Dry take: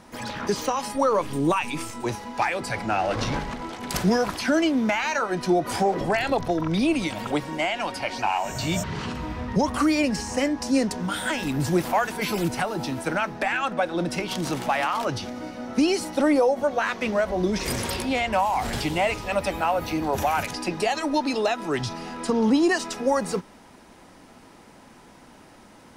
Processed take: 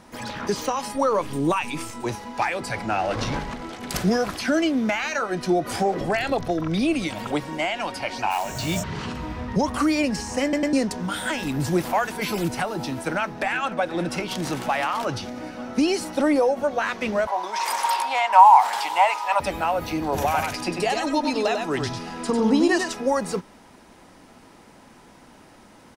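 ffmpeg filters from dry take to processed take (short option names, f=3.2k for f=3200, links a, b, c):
-filter_complex "[0:a]asettb=1/sr,asplit=3[a][b][c];[a]atrim=end=3.574[d];[b]atrim=start=3.57:end=7.09,asetpts=PTS-STARTPTS,afade=t=in:d=0.004:c=qsin,afade=t=out:st=3.516:d=0.004:c=qsin,bandreject=f=940:w=7.3[e];[c]atrim=start=7.086[f];[d][e]acrossfade=d=0.004:c1=hsin:c2=qsin[g];[g][f]acrossfade=d=0.004:c1=qsin:c2=hsin,asplit=3[h][i][j];[h]afade=t=out:st=8.3:d=0.02[k];[i]acrusher=bits=3:mode=log:mix=0:aa=0.000001,afade=t=in:st=8.3:d=0.02,afade=t=out:st=8.79:d=0.02[l];[j]afade=t=in:st=8.79:d=0.02[m];[k][l][m]amix=inputs=3:normalize=0,asplit=2[n][o];[o]afade=t=in:st=12.88:d=0.01,afade=t=out:st=13.77:d=0.01,aecho=0:1:490|980|1470|1960|2450|2940|3430|3920|4410|4900|5390|5880:0.141254|0.113003|0.0904024|0.0723219|0.0578575|0.046286|0.0370288|0.0296231|0.0236984|0.0189588|0.015167|0.0121336[p];[n][p]amix=inputs=2:normalize=0,asettb=1/sr,asplit=3[q][r][s];[q]atrim=end=17.274[t];[r]atrim=start=17.27:end=19.4,asetpts=PTS-STARTPTS,afade=t=in:d=0.004:c=qsin,afade=t=out:st=2.126:d=0.004:c=qsin,highpass=f=910:t=q:w=7[u];[s]atrim=start=19.396[v];[t][u]acrossfade=d=0.004:c1=hsin:c2=qsin[w];[w][v]acrossfade=d=0.004:c1=qsin:c2=hsin,asettb=1/sr,asplit=3[x][y][z];[x]atrim=end=20.024[aa];[y]atrim=start=20.02:end=22.92,asetpts=PTS-STARTPTS,afade=t=in:d=0.004:c=qsin,afade=t=out:st=2.896:d=0.004:c=qsin,aecho=1:1:98:0.562,atrim=end_sample=127890[ab];[z]atrim=start=22.916[ac];[aa][ab]acrossfade=d=0.004:c1=hsin:c2=qsin[ad];[ad][ac]acrossfade=d=0.004:c1=qsin:c2=hsin,asplit=4[ae][af][ag][ah];[ae]atrim=end=10.532[ai];[af]atrim=start=10.428:end=10.532[aj];[ag]atrim=start=10.428:end=10.532[ak];[ah]atrim=start=10.728[al];[ai][aj]acrossfade=d=0.004:c1=hsin:c2=hsin[am];[am][ak]acrossfade=d=0.004:c1=hsin:c2=hsin[an];[an][al]acrossfade=d=0.004:c1=hsin:c2=hsin"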